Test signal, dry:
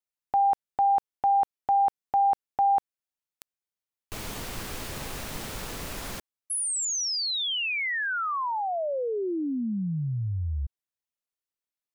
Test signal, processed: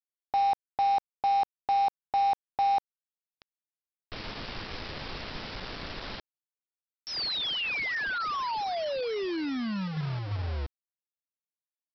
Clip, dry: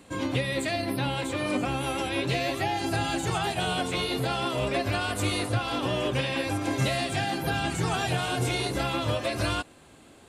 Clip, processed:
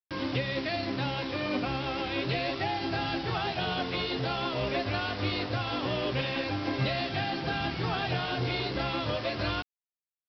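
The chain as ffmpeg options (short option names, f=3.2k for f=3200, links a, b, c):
-af "bandreject=f=55.52:t=h:w=4,bandreject=f=111.04:t=h:w=4,bandreject=f=166.56:t=h:w=4,aresample=11025,acrusher=bits=5:mix=0:aa=0.000001,aresample=44100,volume=-3dB"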